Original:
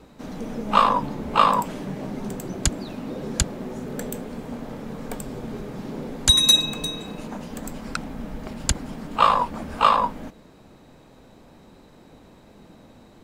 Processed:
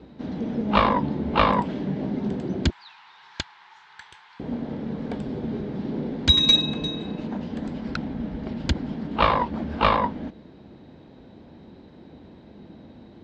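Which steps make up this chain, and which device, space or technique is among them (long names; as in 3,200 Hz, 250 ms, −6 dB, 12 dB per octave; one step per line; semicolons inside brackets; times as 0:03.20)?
0:02.70–0:04.40: elliptic high-pass filter 910 Hz, stop band 40 dB
guitar amplifier (tube saturation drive 6 dB, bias 0.8; bass and treble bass +11 dB, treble +5 dB; loudspeaker in its box 92–3,900 Hz, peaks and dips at 120 Hz −8 dB, 170 Hz −4 dB, 350 Hz +4 dB, 1,200 Hz −6 dB, 2,500 Hz −4 dB)
level +4.5 dB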